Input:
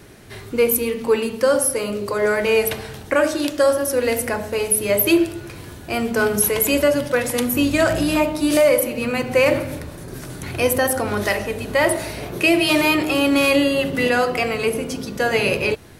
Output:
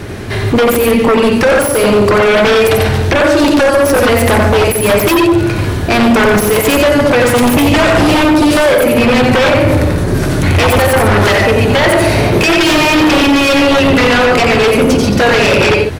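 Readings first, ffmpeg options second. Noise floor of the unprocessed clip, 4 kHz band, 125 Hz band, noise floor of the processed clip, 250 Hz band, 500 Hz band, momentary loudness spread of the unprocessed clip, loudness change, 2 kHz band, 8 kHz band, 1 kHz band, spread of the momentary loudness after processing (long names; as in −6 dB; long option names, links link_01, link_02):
−38 dBFS, +11.0 dB, +17.5 dB, −15 dBFS, +11.0 dB, +9.0 dB, 11 LU, +9.5 dB, +10.0 dB, +4.0 dB, +13.0 dB, 3 LU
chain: -filter_complex "[0:a]acompressor=threshold=-20dB:ratio=5,equalizer=frequency=92:width_type=o:width=0.26:gain=7,asplit=2[link_01][link_02];[link_02]aecho=0:1:90.38|145.8:0.562|0.316[link_03];[link_01][link_03]amix=inputs=2:normalize=0,aeval=exprs='0.376*sin(PI/2*3.98*val(0)/0.376)':channel_layout=same,lowpass=frequency=3400:poles=1,volume=3.5dB"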